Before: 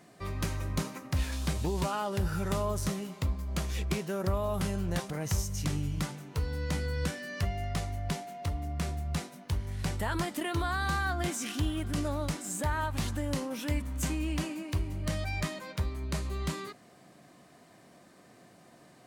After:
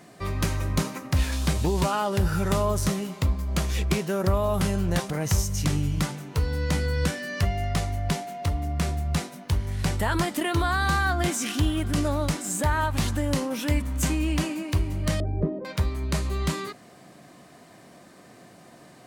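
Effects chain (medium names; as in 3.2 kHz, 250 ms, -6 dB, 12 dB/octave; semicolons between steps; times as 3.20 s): 15.20–15.65 s: resonant low-pass 430 Hz, resonance Q 5; trim +7 dB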